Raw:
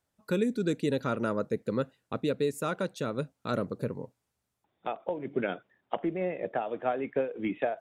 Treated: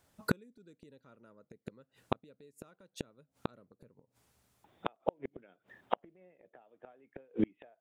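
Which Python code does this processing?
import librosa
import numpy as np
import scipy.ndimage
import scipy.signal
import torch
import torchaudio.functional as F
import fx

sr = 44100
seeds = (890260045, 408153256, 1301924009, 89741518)

y = fx.gate_flip(x, sr, shuts_db=-27.0, range_db=-40)
y = y * librosa.db_to_amplitude(10.5)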